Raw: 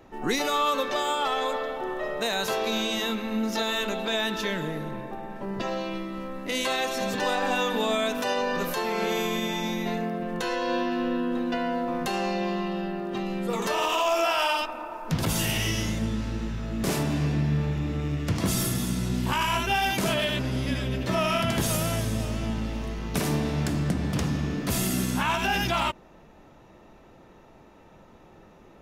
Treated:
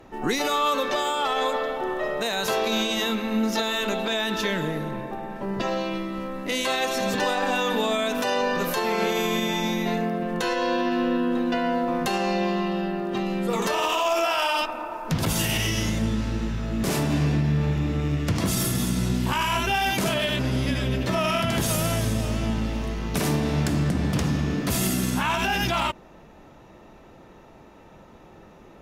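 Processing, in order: limiter -18.5 dBFS, peak gain reduction 4.5 dB; added harmonics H 3 -36 dB, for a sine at -18.5 dBFS; gain +4 dB

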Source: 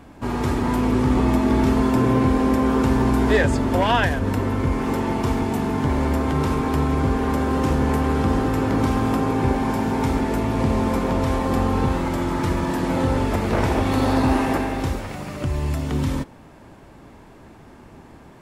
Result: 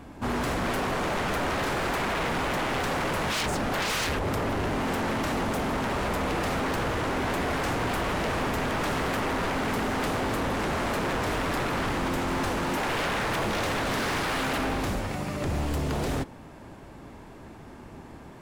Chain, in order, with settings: 12.77–13.45 bell 370 Hz +8 dB 1.3 oct; wavefolder -23 dBFS

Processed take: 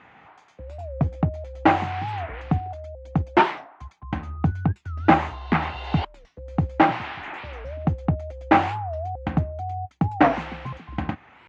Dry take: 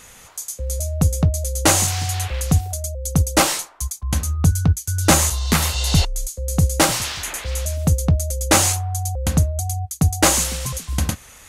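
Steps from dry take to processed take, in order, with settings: speaker cabinet 130–2400 Hz, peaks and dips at 310 Hz +5 dB, 510 Hz -7 dB, 790 Hz +8 dB; record warp 45 rpm, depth 250 cents; gain -2 dB

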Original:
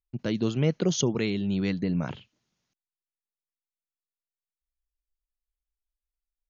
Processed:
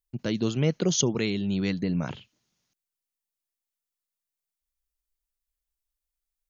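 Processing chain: high shelf 5300 Hz +8.5 dB

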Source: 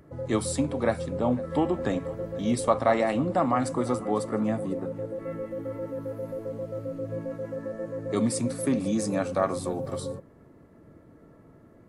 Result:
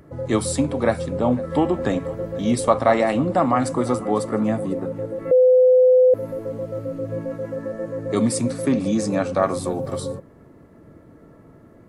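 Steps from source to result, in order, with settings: 5.31–6.14 bleep 508 Hz -15.5 dBFS; 8.5–9.43 LPF 7600 Hz 12 dB/oct; gain +5.5 dB

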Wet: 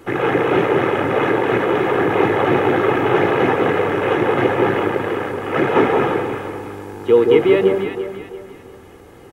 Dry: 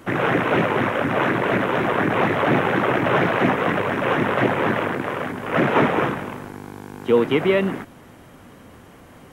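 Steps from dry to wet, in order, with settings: bell 400 Hz +4 dB 0.98 oct; comb 2.4 ms, depth 46%; echo with dull and thin repeats by turns 0.17 s, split 1000 Hz, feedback 60%, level -3 dB; gain -1 dB

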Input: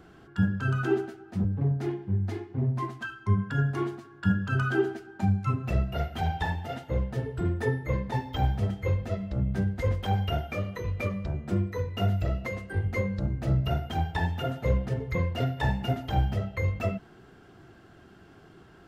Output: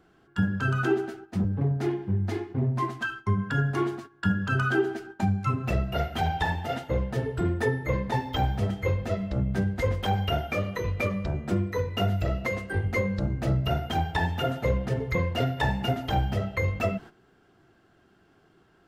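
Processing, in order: gate -45 dBFS, range -13 dB; bell 74 Hz -4.5 dB 2.8 oct; compressor 2:1, threshold -29 dBFS, peak gain reduction 5.5 dB; gain +6 dB

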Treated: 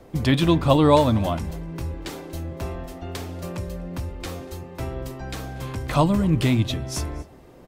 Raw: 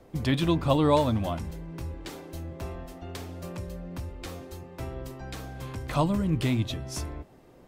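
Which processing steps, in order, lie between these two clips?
echo 0.238 s -23.5 dB; gain +6 dB

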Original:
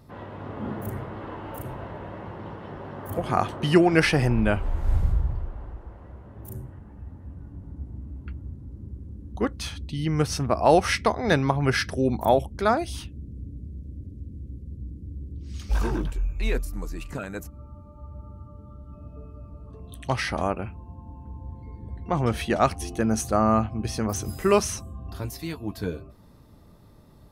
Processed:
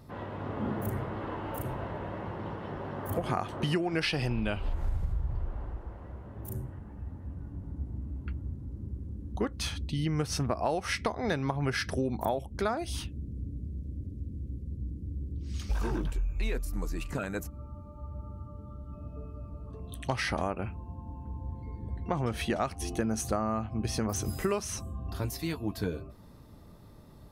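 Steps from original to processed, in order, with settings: 4.01–4.73 band shelf 3600 Hz +9 dB 1.2 oct; compressor 10:1, threshold -26 dBFS, peak gain reduction 14.5 dB

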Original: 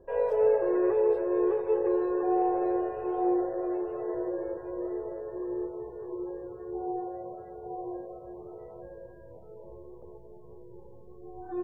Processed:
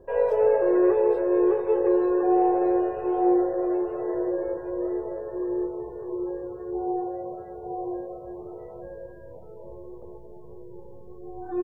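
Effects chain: doubler 22 ms -11 dB; gain +4.5 dB

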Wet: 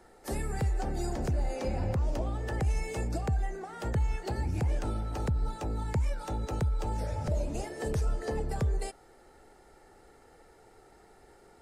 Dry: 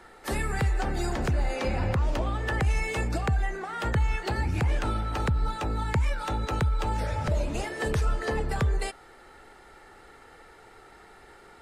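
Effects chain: band shelf 2000 Hz -8 dB 2.3 oct; gain -3.5 dB

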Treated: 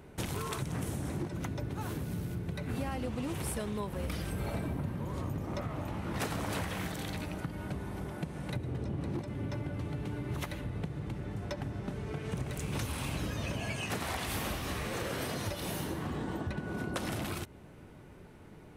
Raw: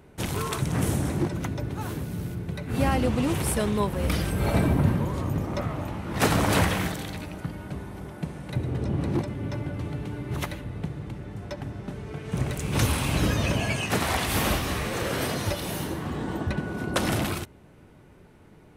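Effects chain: compressor, threshold -33 dBFS, peak gain reduction 16 dB

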